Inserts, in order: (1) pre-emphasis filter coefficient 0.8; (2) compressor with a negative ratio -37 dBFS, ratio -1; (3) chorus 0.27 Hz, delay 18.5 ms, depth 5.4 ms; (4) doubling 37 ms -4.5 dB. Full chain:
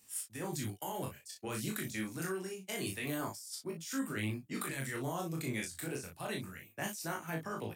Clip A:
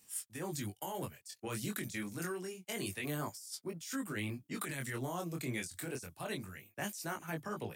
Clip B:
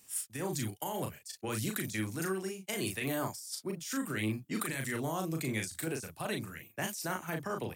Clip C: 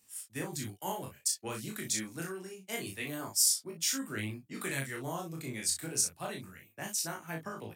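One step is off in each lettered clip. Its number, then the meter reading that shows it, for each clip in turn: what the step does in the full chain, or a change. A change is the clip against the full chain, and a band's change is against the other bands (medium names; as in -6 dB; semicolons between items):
4, loudness change -1.5 LU; 3, loudness change +3.0 LU; 2, crest factor change +5.0 dB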